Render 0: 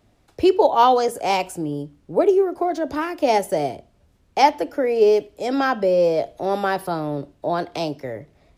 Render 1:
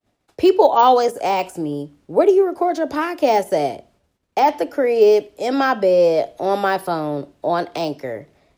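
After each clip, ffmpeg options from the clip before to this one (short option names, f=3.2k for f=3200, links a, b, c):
-af "deesser=0.75,agate=range=-33dB:threshold=-51dB:ratio=3:detection=peak,lowshelf=f=130:g=-11,volume=4dB"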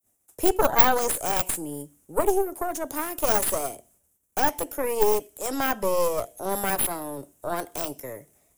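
-af "aexciter=amount=8.3:drive=9.8:freq=6.8k,aeval=exprs='2.24*(cos(1*acos(clip(val(0)/2.24,-1,1)))-cos(1*PI/2))+0.398*(cos(8*acos(clip(val(0)/2.24,-1,1)))-cos(8*PI/2))':c=same,volume=-10.5dB"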